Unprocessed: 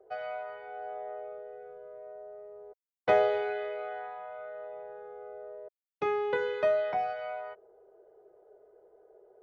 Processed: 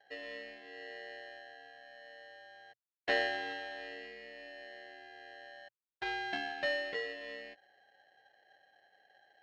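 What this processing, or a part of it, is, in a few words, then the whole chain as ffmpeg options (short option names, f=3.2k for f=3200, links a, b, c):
ring modulator pedal into a guitar cabinet: -af "aeval=exprs='val(0)*sgn(sin(2*PI*1200*n/s))':c=same,highpass=98,equalizer=f=120:t=q:w=4:g=8,equalizer=f=220:t=q:w=4:g=-4,equalizer=f=320:t=q:w=4:g=5,lowpass=f=4.1k:w=0.5412,lowpass=f=4.1k:w=1.3066,volume=-7.5dB"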